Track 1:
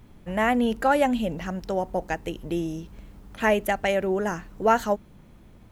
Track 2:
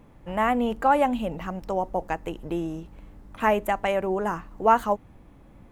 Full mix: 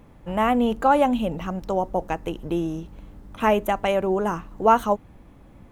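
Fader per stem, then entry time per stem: -9.5, +2.0 dB; 0.00, 0.00 s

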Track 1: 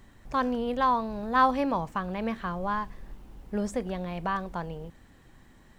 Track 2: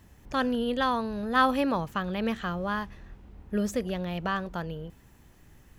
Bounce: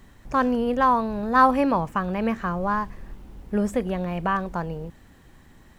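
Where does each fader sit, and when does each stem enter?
+3.0, -4.5 dB; 0.00, 0.00 s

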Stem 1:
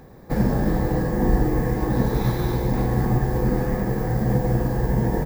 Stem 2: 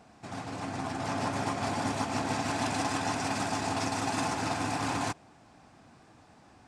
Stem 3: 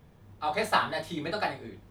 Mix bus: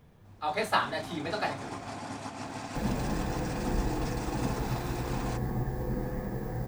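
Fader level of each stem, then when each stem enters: -11.5, -8.0, -1.5 dB; 2.45, 0.25, 0.00 s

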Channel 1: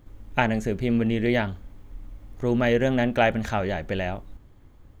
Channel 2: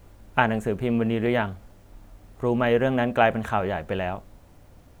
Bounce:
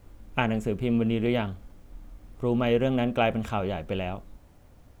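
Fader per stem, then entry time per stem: -8.5, -4.5 dB; 0.00, 0.00 s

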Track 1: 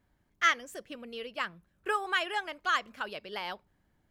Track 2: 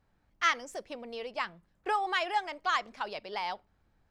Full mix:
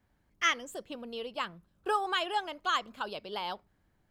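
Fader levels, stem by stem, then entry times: -1.5, -5.5 dB; 0.00, 0.00 s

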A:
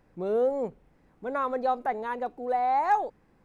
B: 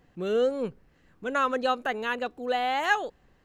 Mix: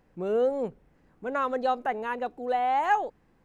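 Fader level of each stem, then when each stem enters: -2.0, -11.5 dB; 0.00, 0.00 s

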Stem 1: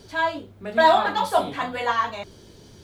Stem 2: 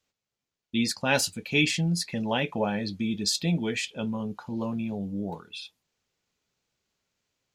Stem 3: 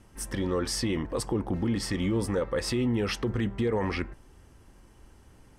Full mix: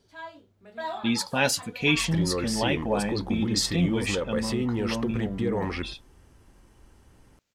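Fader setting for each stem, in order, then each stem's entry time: -17.5, +0.5, -1.0 dB; 0.00, 0.30, 1.80 s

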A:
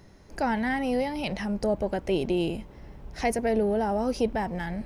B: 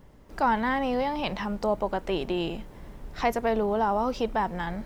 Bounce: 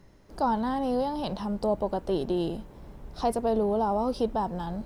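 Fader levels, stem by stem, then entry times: -7.0, -5.5 dB; 0.00, 0.00 s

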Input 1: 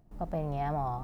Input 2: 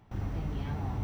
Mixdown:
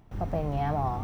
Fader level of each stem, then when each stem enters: +3.0, -1.5 dB; 0.00, 0.00 s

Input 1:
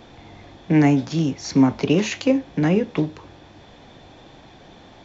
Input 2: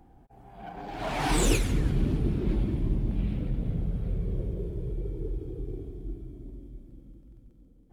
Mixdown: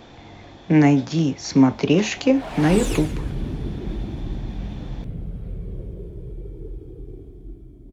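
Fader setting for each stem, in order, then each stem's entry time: +1.0, -1.5 dB; 0.00, 1.40 s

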